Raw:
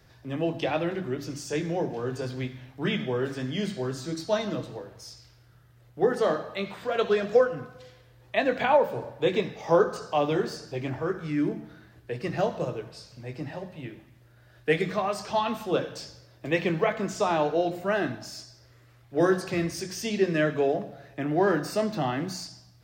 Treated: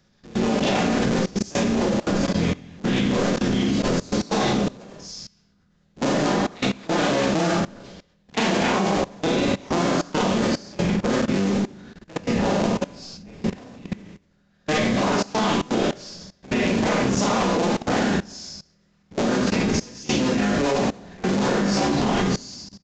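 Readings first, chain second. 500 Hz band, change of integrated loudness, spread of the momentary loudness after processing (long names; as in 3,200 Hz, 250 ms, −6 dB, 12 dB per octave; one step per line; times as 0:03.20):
+1.5 dB, +5.0 dB, 14 LU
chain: sub-harmonics by changed cycles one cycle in 3, inverted
parametric band 200 Hz +10 dB 1.3 octaves
four-comb reverb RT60 0.54 s, combs from 31 ms, DRR −7.5 dB
output level in coarse steps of 21 dB
downsampling to 16,000 Hz
high-shelf EQ 3,700 Hz +8.5 dB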